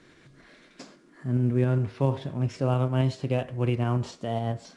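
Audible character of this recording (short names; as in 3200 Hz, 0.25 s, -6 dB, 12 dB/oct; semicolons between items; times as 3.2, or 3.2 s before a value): a quantiser's noise floor 12-bit, dither none; tremolo saw up 7.3 Hz, depth 30%; IMA ADPCM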